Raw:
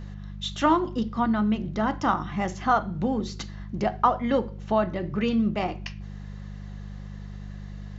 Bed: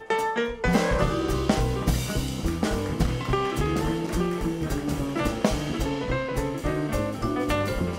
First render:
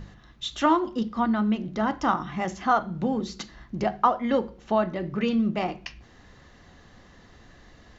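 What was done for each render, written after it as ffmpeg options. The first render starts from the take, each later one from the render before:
-af "bandreject=f=50:t=h:w=4,bandreject=f=100:t=h:w=4,bandreject=f=150:t=h:w=4,bandreject=f=200:t=h:w=4"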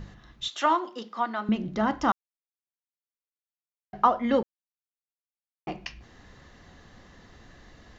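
-filter_complex "[0:a]asettb=1/sr,asplit=3[a][b][c];[a]atrim=end=0.484[d];[b]atrim=start=0.48:end=1.49,asetpts=PTS-STARTPTS,afade=t=in:d=0.004:c=qsin,afade=t=out:st=1.006:d=0.004:c=qsin,highpass=530[e];[c]atrim=start=1.486[f];[d][e]acrossfade=d=0.004:c1=hsin:c2=qsin[g];[g][f]acrossfade=d=0.004:c1=qsin:c2=hsin,asplit=5[h][i][j][k][l];[h]atrim=end=2.12,asetpts=PTS-STARTPTS,afade=t=out:st=2.116:d=0.004:c=hsin[m];[i]atrim=start=2.12:end=3.93,asetpts=PTS-STARTPTS,volume=0[n];[j]atrim=start=3.93:end=4.43,asetpts=PTS-STARTPTS,afade=t=in:d=0.004:c=hsin,afade=t=out:st=0.496:d=0.004:c=hsin[o];[k]atrim=start=4.43:end=5.67,asetpts=PTS-STARTPTS,volume=0[p];[l]atrim=start=5.67,asetpts=PTS-STARTPTS,afade=t=in:d=0.004:c=hsin[q];[m][n][o][p][q]concat=n=5:v=0:a=1"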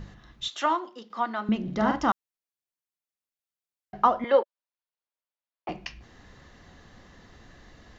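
-filter_complex "[0:a]asettb=1/sr,asplit=3[a][b][c];[a]atrim=end=1.624[d];[b]atrim=start=1.62:end=2.02,asetpts=PTS-STARTPTS,afade=t=in:d=0.004:c=qsin,afade=t=out:st=0.396:d=0.004:c=qsin,asplit=2[e][f];[f]adelay=48,volume=-4dB[g];[e][g]amix=inputs=2:normalize=0,atrim=end_sample=17640[h];[c]atrim=start=2.016[i];[d][h]acrossfade=d=0.004:c1=hsin:c2=qsin[j];[j][i]acrossfade=d=0.004:c1=qsin:c2=hsin,asettb=1/sr,asplit=3[k][l][m];[k]atrim=end=4.244[n];[l]atrim=start=4.24:end=5.69,asetpts=PTS-STARTPTS,afade=t=in:d=0.004:c=qsin,afade=t=out:st=1.446:d=0.004:c=qsin,highpass=f=380:w=0.5412,highpass=f=380:w=1.3066,equalizer=f=580:t=q:w=4:g=7,equalizer=f=970:t=q:w=4:g=7,equalizer=f=1.5k:t=q:w=4:g=3,lowpass=f=4.7k:w=0.5412,lowpass=f=4.7k:w=1.3066[o];[m]atrim=start=5.686[p];[n][o]acrossfade=d=0.004:c1=hsin:c2=qsin[q];[q][p]acrossfade=d=0.004:c1=qsin:c2=hsin,asplit=2[r][s];[r]atrim=end=1.1,asetpts=PTS-STARTPTS,afade=t=out:st=0.49:d=0.61:silence=0.398107[t];[s]atrim=start=1.1,asetpts=PTS-STARTPTS,afade=t=in:d=0.004:c=hsin:silence=0.398107[u];[t][u]concat=n=2:v=0:a=1"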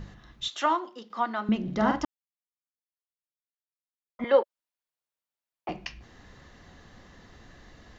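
-filter_complex "[0:a]asplit=3[a][b][c];[a]atrim=end=2.05,asetpts=PTS-STARTPTS,afade=t=out:st=2.046:d=0.004:c=hsin[d];[b]atrim=start=2.05:end=4.19,asetpts=PTS-STARTPTS,volume=0[e];[c]atrim=start=4.19,asetpts=PTS-STARTPTS,afade=t=in:d=0.004:c=hsin[f];[d][e][f]concat=n=3:v=0:a=1"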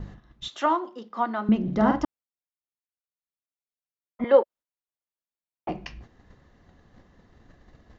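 -af "agate=range=-9dB:threshold=-49dB:ratio=16:detection=peak,tiltshelf=f=1.4k:g=5"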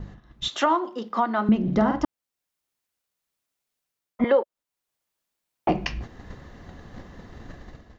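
-af "dynaudnorm=f=110:g=7:m=13dB,alimiter=limit=-11dB:level=0:latency=1:release=380"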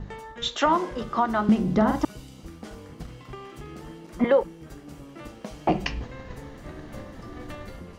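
-filter_complex "[1:a]volume=-15.5dB[a];[0:a][a]amix=inputs=2:normalize=0"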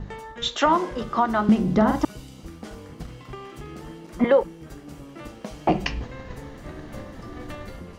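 -af "volume=2dB"

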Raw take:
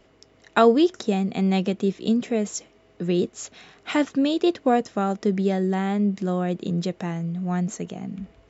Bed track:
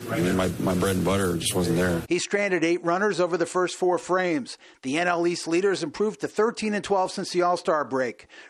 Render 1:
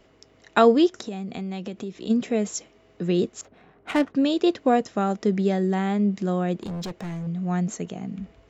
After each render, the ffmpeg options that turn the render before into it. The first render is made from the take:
-filter_complex "[0:a]asplit=3[a][b][c];[a]afade=t=out:st=0.88:d=0.02[d];[b]acompressor=threshold=-30dB:ratio=4:attack=3.2:release=140:knee=1:detection=peak,afade=t=in:st=0.88:d=0.02,afade=t=out:st=2.09:d=0.02[e];[c]afade=t=in:st=2.09:d=0.02[f];[d][e][f]amix=inputs=3:normalize=0,asettb=1/sr,asplit=3[g][h][i];[g]atrim=end=3.414[j];[h]atrim=start=3.41:end=4.15,asetpts=PTS-STARTPTS,afade=t=in:d=0.004:c=qsin,afade=t=out:st=0.736:d=0.004:c=qsin,adynamicsmooth=sensitivity=2.5:basefreq=1.1k[k];[i]atrim=start=4.146[l];[j][k]acrossfade=d=0.004:c1=hsin:c2=qsin[m];[m][l]acrossfade=d=0.004:c1=qsin:c2=hsin,asettb=1/sr,asplit=3[n][o][p];[n]atrim=end=6.604[q];[o]atrim=start=6.6:end=7.27,asetpts=PTS-STARTPTS,afade=t=in:d=0.004:c=qsin,afade=t=out:st=0.666:d=0.004:c=qsin,asoftclip=type=hard:threshold=-29dB[r];[p]atrim=start=7.266[s];[q][r]acrossfade=d=0.004:c1=hsin:c2=qsin[t];[t][s]acrossfade=d=0.004:c1=qsin:c2=hsin"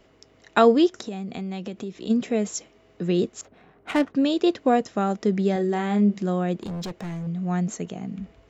-filter_complex "[0:a]asettb=1/sr,asplit=3[a][b][c];[a]atrim=end=5.534[d];[b]atrim=start=5.53:end=6.19,asetpts=PTS-STARTPTS,afade=t=in:d=0.004:c=qsin,afade=t=out:st=0.656:d=0.004:c=qsin,asplit=2[e][f];[f]adelay=29,volume=-7dB[g];[e][g]amix=inputs=2:normalize=0,atrim=end_sample=29106[h];[c]atrim=start=6.186[i];[d][h]acrossfade=d=0.004:c1=hsin:c2=qsin[j];[j][i]acrossfade=d=0.004:c1=qsin:c2=hsin"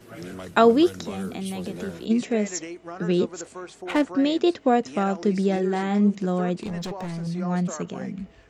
-filter_complex "[1:a]volume=-14dB[a];[0:a][a]amix=inputs=2:normalize=0"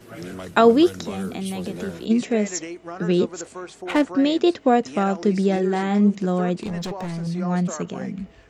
-af "volume=2.5dB,alimiter=limit=-3dB:level=0:latency=1"

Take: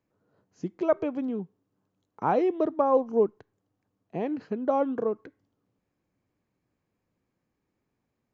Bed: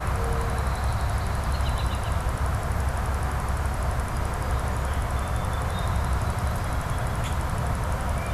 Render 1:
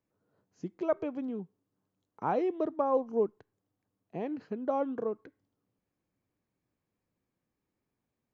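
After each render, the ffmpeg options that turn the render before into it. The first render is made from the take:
-af "volume=-5.5dB"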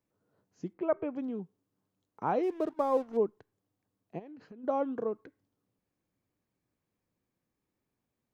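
-filter_complex "[0:a]asettb=1/sr,asplit=3[a][b][c];[a]atrim=end=0.734[d];[b]atrim=start=0.73:end=1.16,asetpts=PTS-STARTPTS,afade=t=in:d=0.004:c=qsin,afade=t=out:st=0.426:d=0.004:c=qsin,lowpass=f=2.7k:w=0.5412,lowpass=f=2.7k:w=1.3066[e];[c]atrim=start=1.156[f];[d][e]acrossfade=d=0.004:c1=hsin:c2=qsin[g];[g][f]acrossfade=d=0.004:c1=qsin:c2=hsin,asettb=1/sr,asplit=3[h][i][j];[h]atrim=end=2.434[k];[i]atrim=start=2.43:end=3.17,asetpts=PTS-STARTPTS,afade=t=in:d=0.004:c=qsin,afade=t=out:st=0.736:d=0.004:c=qsin,aeval=exprs='sgn(val(0))*max(abs(val(0))-0.00299,0)':c=same[l];[j]atrim=start=3.166[m];[k][l]acrossfade=d=0.004:c1=hsin:c2=qsin[n];[n][m]acrossfade=d=0.004:c1=qsin:c2=hsin,asplit=3[o][p][q];[o]afade=t=out:st=4.18:d=0.02[r];[p]acompressor=threshold=-46dB:ratio=8:attack=3.2:release=140:knee=1:detection=peak,afade=t=in:st=4.18:d=0.02,afade=t=out:st=4.63:d=0.02[s];[q]afade=t=in:st=4.63:d=0.02[t];[r][s][t]amix=inputs=3:normalize=0"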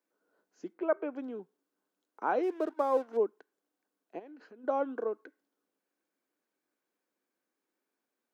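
-af "highpass=f=280:w=0.5412,highpass=f=280:w=1.3066,equalizer=f=1.5k:t=o:w=0.21:g=8.5"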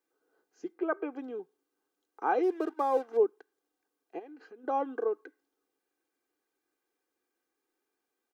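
-af "aecho=1:1:2.5:0.61"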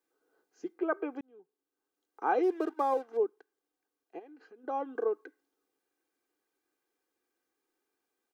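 -filter_complex "[0:a]asplit=4[a][b][c][d];[a]atrim=end=1.21,asetpts=PTS-STARTPTS,afade=t=out:st=1.206:d=0.004:c=hsin[e];[b]atrim=start=1.21:end=2.942,asetpts=PTS-STARTPTS,afade=t=in:d=1.14[f];[c]atrim=start=2.938:end=4.952,asetpts=PTS-STARTPTS,volume=-4dB[g];[d]atrim=start=4.948[h];[e][f]concat=n=2:v=0:a=1[i];[i][g]acrossfade=d=0.004:c1=hsin:c2=hsin[j];[j][h]acrossfade=d=0.004:c1=hsin:c2=hsin"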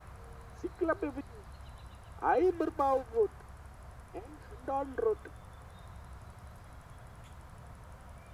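-filter_complex "[1:a]volume=-24dB[a];[0:a][a]amix=inputs=2:normalize=0"

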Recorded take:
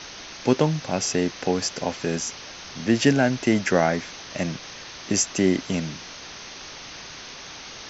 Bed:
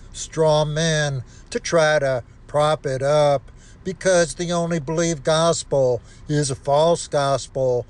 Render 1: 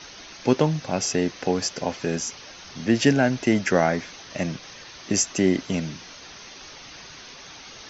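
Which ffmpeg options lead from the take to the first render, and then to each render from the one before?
-af "afftdn=nr=6:nf=-40"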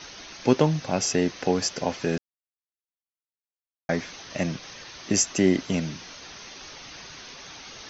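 -filter_complex "[0:a]asplit=3[a][b][c];[a]atrim=end=2.18,asetpts=PTS-STARTPTS,afade=t=out:st=2.176:d=0.004:c=hsin[d];[b]atrim=start=2.18:end=3.89,asetpts=PTS-STARTPTS,volume=0[e];[c]atrim=start=3.89,asetpts=PTS-STARTPTS,afade=t=in:d=0.004:c=hsin[f];[d][e][f]concat=n=3:v=0:a=1"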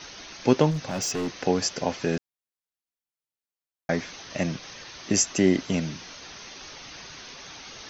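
-filter_complex "[0:a]asplit=3[a][b][c];[a]afade=t=out:st=0.7:d=0.02[d];[b]asoftclip=type=hard:threshold=-25dB,afade=t=in:st=0.7:d=0.02,afade=t=out:st=1.27:d=0.02[e];[c]afade=t=in:st=1.27:d=0.02[f];[d][e][f]amix=inputs=3:normalize=0"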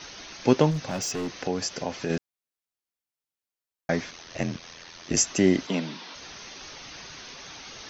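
-filter_complex "[0:a]asettb=1/sr,asplit=3[a][b][c];[a]atrim=end=0.964[d];[b]atrim=start=0.96:end=2.1,asetpts=PTS-STARTPTS,afade=t=in:d=0.004:c=qsin,afade=t=out:st=1.136:d=0.004:c=qsin,acompressor=threshold=-31dB:ratio=1.5:attack=3.2:release=140:knee=1:detection=peak[e];[c]atrim=start=2.096[f];[d][e]acrossfade=d=0.004:c1=hsin:c2=qsin[g];[g][f]acrossfade=d=0.004:c1=qsin:c2=hsin,asettb=1/sr,asplit=3[h][i][j];[h]atrim=end=4.104[k];[i]atrim=start=4.1:end=5.17,asetpts=PTS-STARTPTS,afade=t=in:d=0.004:c=qsin,afade=t=out:st=1.066:d=0.004:c=qsin,aeval=exprs='val(0)*sin(2*PI*42*n/s)':c=same[l];[j]atrim=start=5.166[m];[k][l]acrossfade=d=0.004:c1=hsin:c2=qsin[n];[n][m]acrossfade=d=0.004:c1=qsin:c2=hsin,asettb=1/sr,asplit=3[o][p][q];[o]atrim=end=5.674[r];[p]atrim=start=5.67:end=6.15,asetpts=PTS-STARTPTS,afade=t=in:d=0.004:c=qsin,afade=t=out:st=0.476:d=0.004:c=qsin,highpass=f=190:w=0.5412,highpass=f=190:w=1.3066,equalizer=f=960:t=q:w=4:g=7,equalizer=f=3.6k:t=q:w=4:g=4,equalizer=f=6.3k:t=q:w=4:g=-7,lowpass=f=6.7k:w=0.5412,lowpass=f=6.7k:w=1.3066[s];[q]atrim=start=6.146[t];[r][s]acrossfade=d=0.004:c1=hsin:c2=qsin[u];[u][t]acrossfade=d=0.004:c1=qsin:c2=hsin"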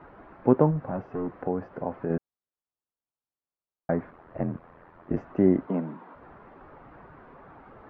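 -af "lowpass=f=1.3k:w=0.5412,lowpass=f=1.3k:w=1.3066"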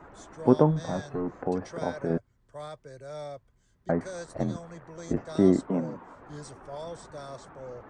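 -filter_complex "[1:a]volume=-22.5dB[a];[0:a][a]amix=inputs=2:normalize=0"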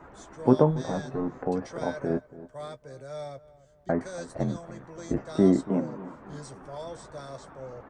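-filter_complex "[0:a]asplit=2[a][b];[b]adelay=15,volume=-9.5dB[c];[a][c]amix=inputs=2:normalize=0,asplit=2[d][e];[e]adelay=282,lowpass=f=1.4k:p=1,volume=-17dB,asplit=2[f][g];[g]adelay=282,lowpass=f=1.4k:p=1,volume=0.45,asplit=2[h][i];[i]adelay=282,lowpass=f=1.4k:p=1,volume=0.45,asplit=2[j][k];[k]adelay=282,lowpass=f=1.4k:p=1,volume=0.45[l];[d][f][h][j][l]amix=inputs=5:normalize=0"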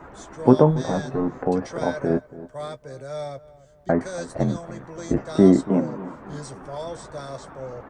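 -af "volume=6dB,alimiter=limit=-2dB:level=0:latency=1"

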